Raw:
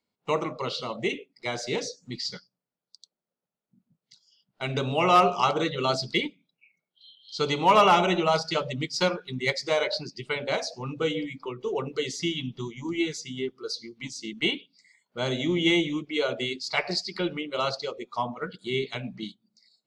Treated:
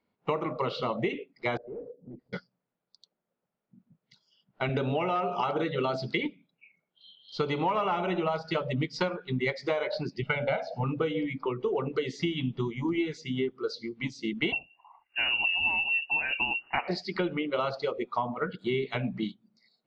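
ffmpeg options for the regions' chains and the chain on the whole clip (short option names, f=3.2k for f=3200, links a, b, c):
-filter_complex "[0:a]asettb=1/sr,asplit=3[a][b][c];[a]atrim=end=1.574[d];[b]atrim=start=1.57:end=2.33,asetpts=PTS-STARTPTS,afade=t=in:d=0.004:c=qsin,afade=t=out:st=0.756:d=0.004:c=qsin,volume=34dB,asoftclip=hard,volume=-34dB,acompressor=threshold=-50dB:ratio=10:attack=3.2:release=140:knee=1:detection=peak,lowpass=f=470:t=q:w=2.5[e];[c]atrim=start=2.326[f];[d][e]acrossfade=d=0.004:c1=hsin:c2=qsin[g];[g][f]acrossfade=d=0.004:c1=qsin:c2=hsin,asettb=1/sr,asplit=3[h][i][j];[h]atrim=end=4.694[k];[i]atrim=start=4.69:end=6.22,asetpts=PTS-STARTPTS,afade=t=in:d=0.004:c=qsin,afade=t=out:st=1.526:d=0.004:c=qsin,highpass=120,bandreject=f=1.1k:w=8.6,acompressor=threshold=-23dB:ratio=2:attack=3.2:release=140:knee=1:detection=peak[l];[j]atrim=start=6.216[m];[k][l]acrossfade=d=0.004:c1=hsin:c2=qsin[n];[n][m]acrossfade=d=0.004:c1=qsin:c2=hsin,asettb=1/sr,asplit=3[o][p][q];[o]atrim=end=10.224[r];[p]atrim=start=10.22:end=10.84,asetpts=PTS-STARTPTS,afade=t=in:d=0.004:c=qsin,afade=t=out:st=0.616:d=0.004:c=qsin,lowpass=3.9k,equalizer=f=160:t=o:w=0.39:g=5,aecho=1:1:1.4:0.95,atrim=end_sample=27342[s];[q]atrim=start=10.836[t];[r][s]acrossfade=d=0.004:c1=hsin:c2=qsin[u];[u][t]acrossfade=d=0.004:c1=qsin:c2=hsin,asettb=1/sr,asplit=3[v][w][x];[v]atrim=end=14.524[y];[w]atrim=start=14.52:end=16.88,asetpts=PTS-STARTPTS,afade=t=in:d=0.004:c=qsin,afade=t=out:st=2.356:d=0.004:c=qsin,lowshelf=f=370:t=q:w=3:g=7,lowpass=f=2.6k:t=q:w=0.5098,lowpass=f=2.6k:t=q:w=0.6013,lowpass=f=2.6k:t=q:w=0.9,lowpass=f=2.6k:t=q:w=2.563,afreqshift=-3000[z];[x]atrim=start=16.876[aa];[y][z]acrossfade=d=0.004:c1=hsin:c2=qsin[ab];[ab][aa]acrossfade=d=0.004:c1=qsin:c2=hsin,lowpass=2.3k,acompressor=threshold=-31dB:ratio=12,volume=6dB"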